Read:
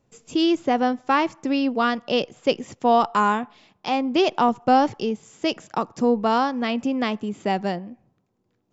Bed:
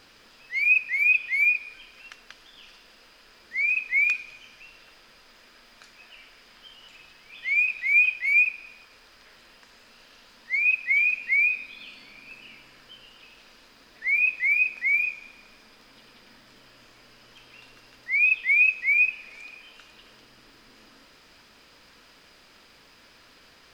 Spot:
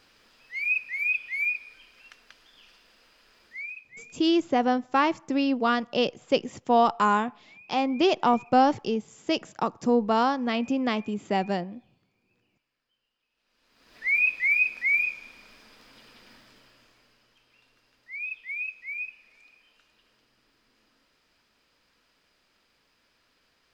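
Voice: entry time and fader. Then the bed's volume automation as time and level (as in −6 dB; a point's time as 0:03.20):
3.85 s, −2.5 dB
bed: 0:03.46 −6 dB
0:04.12 −30 dB
0:13.29 −30 dB
0:13.97 −0.5 dB
0:16.34 −0.5 dB
0:17.39 −14 dB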